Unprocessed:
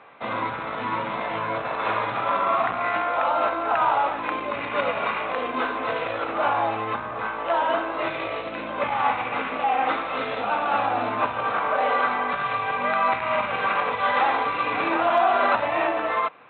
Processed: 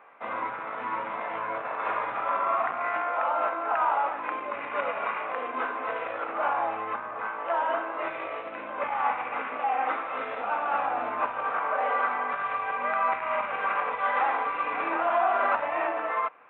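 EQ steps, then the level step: Gaussian low-pass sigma 4.3 samples; tilt EQ +3.5 dB/octave; peaking EQ 110 Hz -4.5 dB 1.9 oct; -2.0 dB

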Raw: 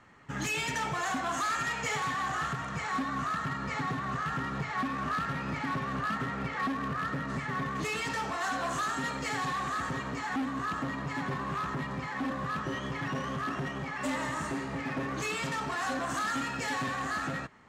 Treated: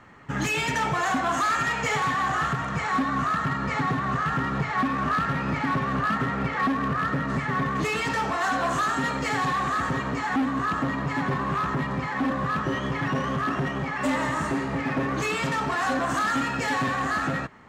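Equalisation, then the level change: peaking EQ 8.8 kHz -5.5 dB 2.7 oct; +8.0 dB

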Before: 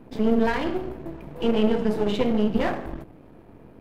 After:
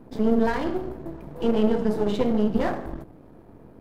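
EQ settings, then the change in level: peaking EQ 2.6 kHz -7 dB 0.92 oct; 0.0 dB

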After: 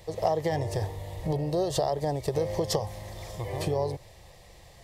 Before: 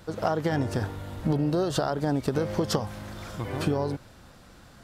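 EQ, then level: peaking EQ 1.9 kHz +11 dB 0.48 oct; dynamic bell 2.5 kHz, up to -5 dB, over -48 dBFS, Q 1.3; static phaser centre 600 Hz, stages 4; +2.0 dB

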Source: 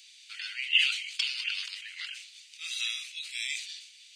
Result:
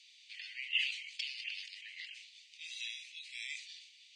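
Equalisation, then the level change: steep high-pass 1.8 kHz 72 dB/octave; dynamic bell 3.3 kHz, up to -5 dB, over -42 dBFS, Q 1.1; distance through air 98 m; -3.5 dB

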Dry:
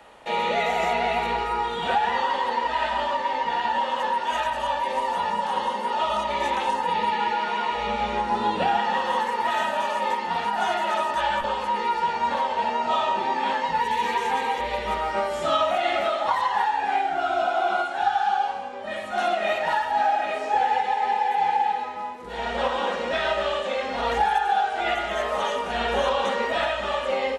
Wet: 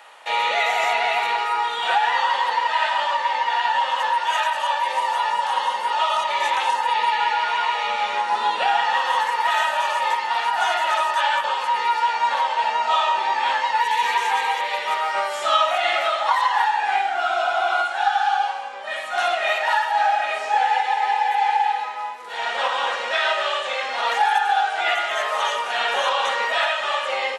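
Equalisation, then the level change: high-pass 910 Hz 12 dB/octave; +6.5 dB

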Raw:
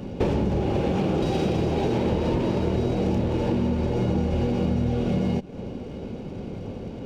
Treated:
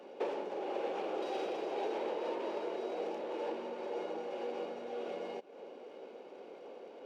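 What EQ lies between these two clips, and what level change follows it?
high-pass 420 Hz 24 dB/octave; treble shelf 3.9 kHz -10 dB; -7.5 dB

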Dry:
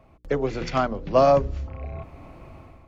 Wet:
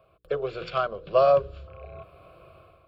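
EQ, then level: high-pass 250 Hz 6 dB/octave; static phaser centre 1.3 kHz, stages 8; 0.0 dB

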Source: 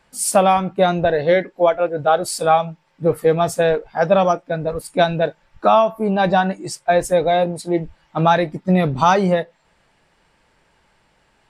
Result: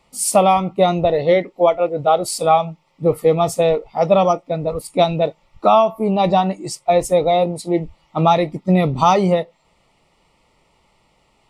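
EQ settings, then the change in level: Butterworth band-stop 1.6 kHz, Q 2.8; +1.0 dB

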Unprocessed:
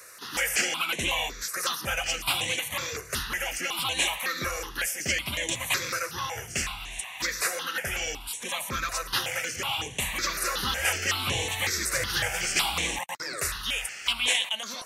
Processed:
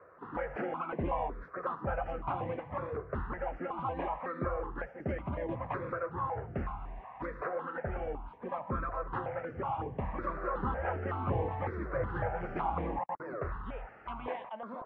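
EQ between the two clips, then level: low-pass 1.1 kHz 24 dB/octave; +1.5 dB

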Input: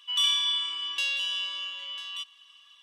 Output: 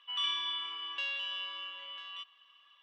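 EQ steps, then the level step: band-pass 240–2000 Hz; 0.0 dB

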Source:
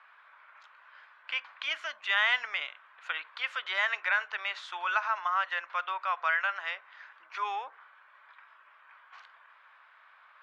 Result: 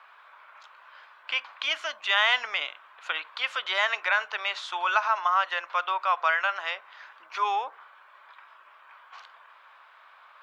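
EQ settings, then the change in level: peaking EQ 1.8 kHz -7.5 dB 1.1 oct; +9.0 dB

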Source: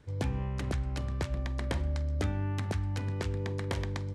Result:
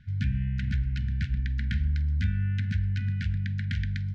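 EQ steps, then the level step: brick-wall FIR band-stop 250–1400 Hz; distance through air 210 m; +5.5 dB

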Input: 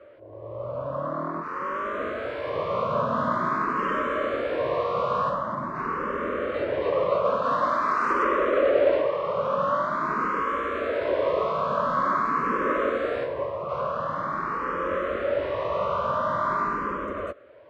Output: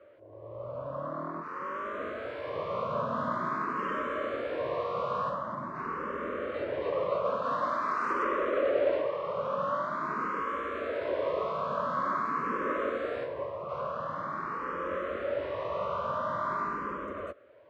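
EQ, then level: high-pass 56 Hz; -6.5 dB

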